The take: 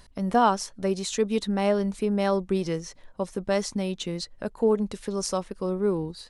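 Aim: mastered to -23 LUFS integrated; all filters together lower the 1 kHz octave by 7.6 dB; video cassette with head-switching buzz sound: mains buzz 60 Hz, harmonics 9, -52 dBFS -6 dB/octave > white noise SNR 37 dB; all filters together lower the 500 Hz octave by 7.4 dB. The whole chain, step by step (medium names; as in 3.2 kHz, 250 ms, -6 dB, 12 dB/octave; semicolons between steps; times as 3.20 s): peaking EQ 500 Hz -8 dB; peaking EQ 1 kHz -7 dB; mains buzz 60 Hz, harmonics 9, -52 dBFS -6 dB/octave; white noise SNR 37 dB; trim +7.5 dB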